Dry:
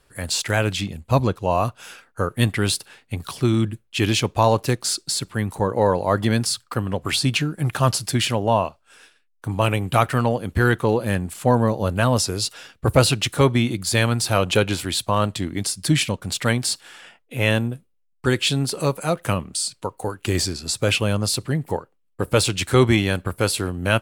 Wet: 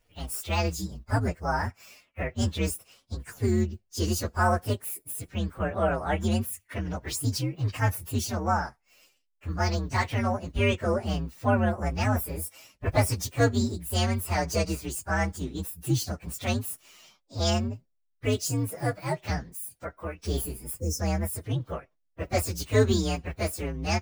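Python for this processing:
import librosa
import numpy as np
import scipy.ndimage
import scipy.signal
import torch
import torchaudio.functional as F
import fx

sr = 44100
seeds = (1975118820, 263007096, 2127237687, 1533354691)

y = fx.partial_stretch(x, sr, pct=128)
y = fx.spec_box(y, sr, start_s=20.8, length_s=0.2, low_hz=540.0, high_hz=5200.0, gain_db=-28)
y = y * 10.0 ** (-4.5 / 20.0)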